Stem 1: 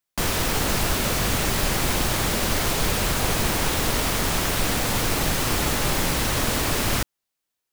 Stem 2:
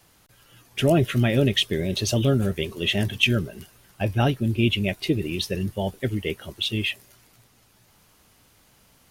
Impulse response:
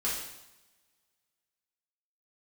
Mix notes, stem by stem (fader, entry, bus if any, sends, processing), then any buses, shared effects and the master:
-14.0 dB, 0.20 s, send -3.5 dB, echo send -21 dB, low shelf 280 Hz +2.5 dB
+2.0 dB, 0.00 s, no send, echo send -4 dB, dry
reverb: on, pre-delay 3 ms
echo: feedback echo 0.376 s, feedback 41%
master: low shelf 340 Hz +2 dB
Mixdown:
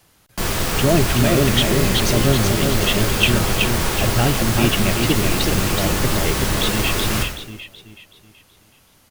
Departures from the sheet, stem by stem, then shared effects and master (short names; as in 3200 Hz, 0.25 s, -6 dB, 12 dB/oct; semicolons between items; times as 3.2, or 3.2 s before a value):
stem 1 -14.0 dB -> -4.5 dB; master: missing low shelf 340 Hz +2 dB